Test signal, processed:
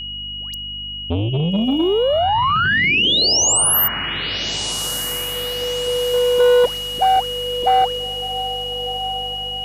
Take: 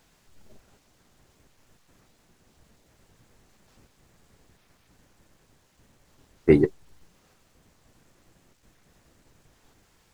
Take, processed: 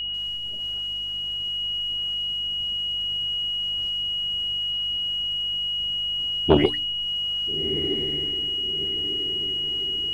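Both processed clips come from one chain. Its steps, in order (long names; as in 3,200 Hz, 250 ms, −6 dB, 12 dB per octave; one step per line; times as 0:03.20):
parametric band 76 Hz +6.5 dB 0.47 octaves
mains-hum notches 60/120/180/240/300 Hz
in parallel at +1 dB: downward compressor, threshold −32 dBFS
on the sum: mains hum 50 Hz, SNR 19 dB
all-pass dispersion highs, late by 146 ms, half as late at 1,200 Hz
steady tone 2,900 Hz −28 dBFS
feedback delay with all-pass diffusion 1,331 ms, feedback 44%, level −11 dB
saturating transformer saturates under 510 Hz
level +1.5 dB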